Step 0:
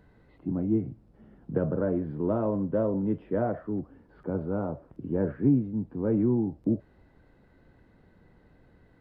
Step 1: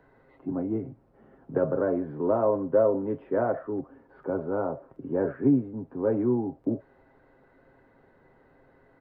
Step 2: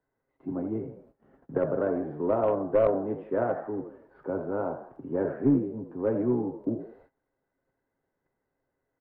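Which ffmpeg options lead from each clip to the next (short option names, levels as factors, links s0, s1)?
-filter_complex "[0:a]acrossover=split=340 2000:gain=0.224 1 0.224[s0][s1][s2];[s0][s1][s2]amix=inputs=3:normalize=0,aecho=1:1:7.5:0.45,volume=1.88"
-filter_complex "[0:a]asplit=5[s0][s1][s2][s3][s4];[s1]adelay=81,afreqshift=55,volume=0.316[s5];[s2]adelay=162,afreqshift=110,volume=0.123[s6];[s3]adelay=243,afreqshift=165,volume=0.0479[s7];[s4]adelay=324,afreqshift=220,volume=0.0188[s8];[s0][s5][s6][s7][s8]amix=inputs=5:normalize=0,aeval=exprs='0.335*(cos(1*acos(clip(val(0)/0.335,-1,1)))-cos(1*PI/2))+0.0944*(cos(2*acos(clip(val(0)/0.335,-1,1)))-cos(2*PI/2))+0.0237*(cos(4*acos(clip(val(0)/0.335,-1,1)))-cos(4*PI/2))+0.00422*(cos(7*acos(clip(val(0)/0.335,-1,1)))-cos(7*PI/2))':c=same,agate=range=0.1:threshold=0.00178:ratio=16:detection=peak,volume=0.841"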